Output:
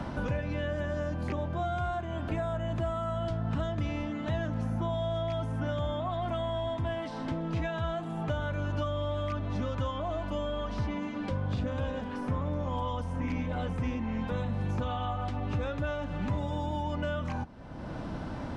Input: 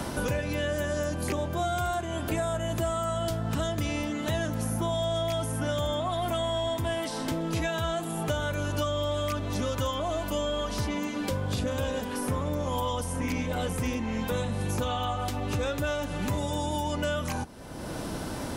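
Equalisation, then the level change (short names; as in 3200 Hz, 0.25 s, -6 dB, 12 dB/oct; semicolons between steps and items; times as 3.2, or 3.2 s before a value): tape spacing loss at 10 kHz 29 dB; bell 410 Hz -6.5 dB 0.81 oct; 0.0 dB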